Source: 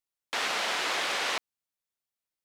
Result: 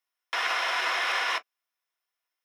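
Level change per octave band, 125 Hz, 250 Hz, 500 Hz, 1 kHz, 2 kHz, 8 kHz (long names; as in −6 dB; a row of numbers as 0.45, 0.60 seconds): can't be measured, −7.5 dB, −1.5 dB, +3.5 dB, +3.5 dB, −5.5 dB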